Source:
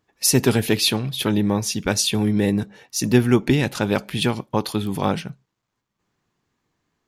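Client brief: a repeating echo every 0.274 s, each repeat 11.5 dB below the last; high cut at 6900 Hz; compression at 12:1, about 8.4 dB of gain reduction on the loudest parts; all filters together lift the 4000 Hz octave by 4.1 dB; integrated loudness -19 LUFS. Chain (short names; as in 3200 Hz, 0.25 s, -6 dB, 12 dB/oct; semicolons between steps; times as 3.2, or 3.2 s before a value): LPF 6900 Hz; bell 4000 Hz +5.5 dB; compressor 12:1, threshold -19 dBFS; feedback echo 0.274 s, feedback 27%, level -11.5 dB; gain +5.5 dB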